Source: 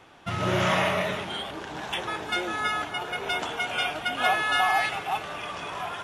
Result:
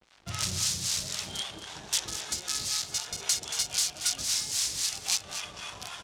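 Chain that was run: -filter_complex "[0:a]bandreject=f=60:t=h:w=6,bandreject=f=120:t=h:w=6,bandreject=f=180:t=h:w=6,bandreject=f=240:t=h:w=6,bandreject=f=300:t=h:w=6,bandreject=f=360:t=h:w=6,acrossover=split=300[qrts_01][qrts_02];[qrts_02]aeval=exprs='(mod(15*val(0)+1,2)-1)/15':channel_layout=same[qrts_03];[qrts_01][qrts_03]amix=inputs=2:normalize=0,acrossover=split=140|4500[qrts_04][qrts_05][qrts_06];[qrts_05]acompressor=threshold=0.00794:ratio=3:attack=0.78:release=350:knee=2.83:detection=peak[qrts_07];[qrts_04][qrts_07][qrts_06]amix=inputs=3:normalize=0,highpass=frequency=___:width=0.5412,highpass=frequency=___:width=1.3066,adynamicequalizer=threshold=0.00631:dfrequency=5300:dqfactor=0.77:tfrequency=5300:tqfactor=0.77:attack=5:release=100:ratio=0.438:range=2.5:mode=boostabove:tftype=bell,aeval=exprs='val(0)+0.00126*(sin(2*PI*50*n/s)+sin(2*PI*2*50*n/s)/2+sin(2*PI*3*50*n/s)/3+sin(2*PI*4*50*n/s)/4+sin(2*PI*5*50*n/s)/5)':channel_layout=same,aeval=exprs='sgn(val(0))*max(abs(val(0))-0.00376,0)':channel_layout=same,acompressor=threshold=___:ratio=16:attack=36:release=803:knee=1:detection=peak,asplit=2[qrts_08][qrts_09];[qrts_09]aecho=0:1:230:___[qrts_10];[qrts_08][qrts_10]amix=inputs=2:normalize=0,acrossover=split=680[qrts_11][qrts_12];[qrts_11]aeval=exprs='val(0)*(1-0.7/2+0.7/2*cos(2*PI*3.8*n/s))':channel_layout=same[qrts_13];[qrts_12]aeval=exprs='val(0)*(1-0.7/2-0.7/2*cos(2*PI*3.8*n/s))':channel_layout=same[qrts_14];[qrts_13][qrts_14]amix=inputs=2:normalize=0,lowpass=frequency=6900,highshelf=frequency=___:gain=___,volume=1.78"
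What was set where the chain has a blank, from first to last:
47, 47, 0.0251, 0.335, 3200, 10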